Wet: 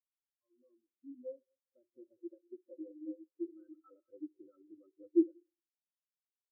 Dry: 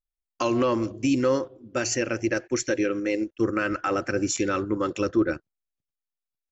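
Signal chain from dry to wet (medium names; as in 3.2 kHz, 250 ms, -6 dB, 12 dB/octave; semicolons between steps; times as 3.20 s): fade-in on the opening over 1.97 s; low-pass 1.4 kHz 24 dB/octave; in parallel at 0 dB: compression, threshold -34 dBFS, peak gain reduction 15.5 dB; on the sum: multi-head delay 66 ms, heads first and third, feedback 41%, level -12 dB; on a send at -9 dB: reverberation RT60 1.7 s, pre-delay 17 ms; on the sum: spectral contrast expander 4:1; trim -7.5 dB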